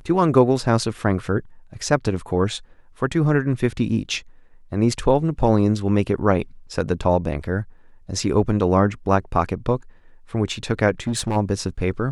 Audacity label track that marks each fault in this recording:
10.900000	11.370000	clipped -18 dBFS

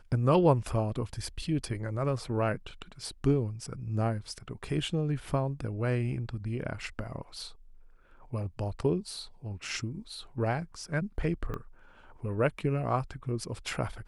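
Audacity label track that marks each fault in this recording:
11.540000	11.540000	pop -25 dBFS

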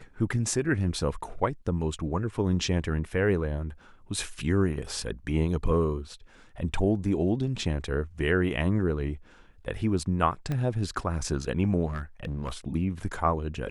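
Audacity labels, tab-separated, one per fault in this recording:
10.520000	10.520000	pop -19 dBFS
11.860000	12.520000	clipped -27.5 dBFS

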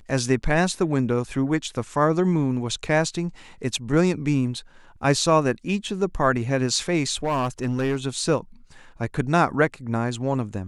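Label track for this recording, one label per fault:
7.240000	7.970000	clipped -19 dBFS

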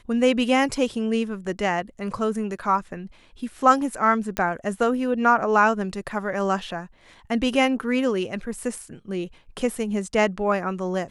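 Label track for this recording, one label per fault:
4.370000	4.370000	pop -11 dBFS

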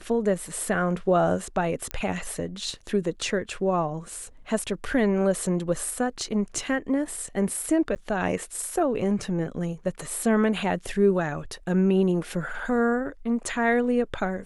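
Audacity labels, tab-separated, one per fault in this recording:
1.910000	1.910000	pop -14 dBFS
7.950000	7.960000	gap 9 ms

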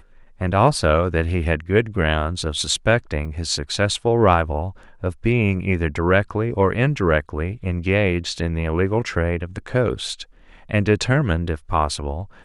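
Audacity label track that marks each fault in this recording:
3.250000	3.250000	gap 2.8 ms

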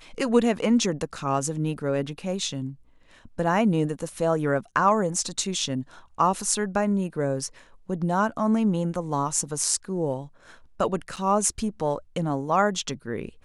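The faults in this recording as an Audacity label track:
11.160000	11.170000	gap 6.9 ms

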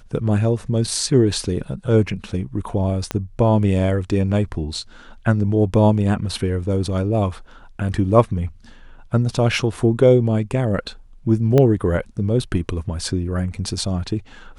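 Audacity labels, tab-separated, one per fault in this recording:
3.110000	3.110000	pop -9 dBFS
11.580000	11.580000	pop -6 dBFS

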